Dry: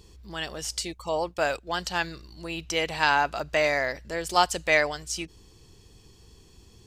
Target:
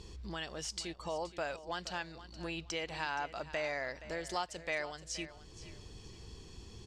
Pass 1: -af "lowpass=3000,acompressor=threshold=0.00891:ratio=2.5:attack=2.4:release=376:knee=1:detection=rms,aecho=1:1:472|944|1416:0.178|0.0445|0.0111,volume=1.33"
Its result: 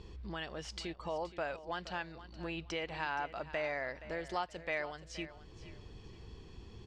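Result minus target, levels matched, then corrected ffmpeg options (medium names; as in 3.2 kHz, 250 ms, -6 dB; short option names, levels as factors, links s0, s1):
8 kHz band -9.5 dB
-af "lowpass=7100,acompressor=threshold=0.00891:ratio=2.5:attack=2.4:release=376:knee=1:detection=rms,aecho=1:1:472|944|1416:0.178|0.0445|0.0111,volume=1.33"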